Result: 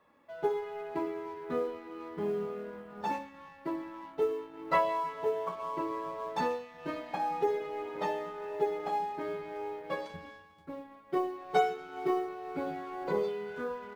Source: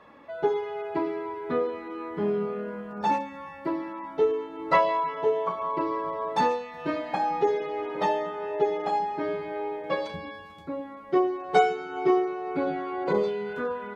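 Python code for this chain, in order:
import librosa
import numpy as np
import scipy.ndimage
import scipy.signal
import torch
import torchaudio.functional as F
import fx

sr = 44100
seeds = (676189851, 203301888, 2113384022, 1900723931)

y = fx.law_mismatch(x, sr, coded='A')
y = fx.doubler(y, sr, ms=12.0, db=-12.0)
y = y * 10.0 ** (-6.5 / 20.0)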